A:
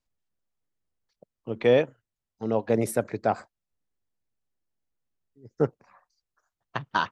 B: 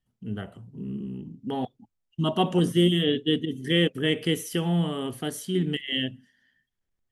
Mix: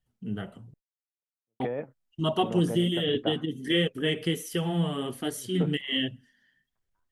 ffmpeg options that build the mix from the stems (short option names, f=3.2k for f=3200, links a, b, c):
-filter_complex "[0:a]lowpass=f=2k:w=0.5412,lowpass=f=2k:w=1.3066,acompressor=threshold=-25dB:ratio=5,flanger=delay=6.8:depth=2.4:regen=68:speed=1.7:shape=sinusoidal,volume=0.5dB[a];[1:a]flanger=delay=1.3:depth=5.4:regen=-27:speed=1.3:shape=triangular,volume=3dB,asplit=3[b][c][d];[b]atrim=end=0.74,asetpts=PTS-STARTPTS,afade=t=out:st=0.736:d=0.004:c=hsin[e];[c]atrim=start=0.74:end=1.6,asetpts=PTS-STARTPTS,volume=0[f];[d]atrim=start=1.6,asetpts=PTS-STARTPTS,afade=t=in:d=0.004:c=hsin[g];[e][f][g]concat=n=3:v=0:a=1,asplit=2[h][i];[i]apad=whole_len=313742[j];[a][j]sidechaingate=range=-52dB:threshold=-57dB:ratio=16:detection=peak[k];[k][h]amix=inputs=2:normalize=0,alimiter=limit=-14.5dB:level=0:latency=1:release=443"